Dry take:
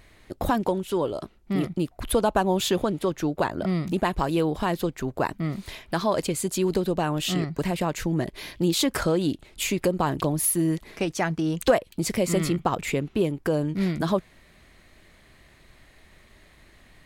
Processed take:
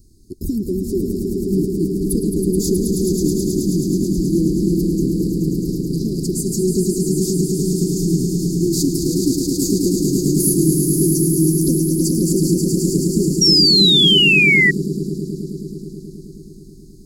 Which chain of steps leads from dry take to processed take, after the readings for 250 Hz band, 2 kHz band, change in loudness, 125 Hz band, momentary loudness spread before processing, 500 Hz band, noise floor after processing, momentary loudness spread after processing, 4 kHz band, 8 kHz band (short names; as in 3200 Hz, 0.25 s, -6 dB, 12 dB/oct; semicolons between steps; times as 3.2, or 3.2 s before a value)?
+10.0 dB, +14.0 dB, +9.5 dB, +10.0 dB, 6 LU, +4.5 dB, -39 dBFS, 13 LU, +17.5 dB, +10.5 dB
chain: Chebyshev band-stop 390–4700 Hz, order 5; swelling echo 0.107 s, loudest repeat 5, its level -6 dB; painted sound fall, 13.41–14.71, 1900–5700 Hz -18 dBFS; gain +5.5 dB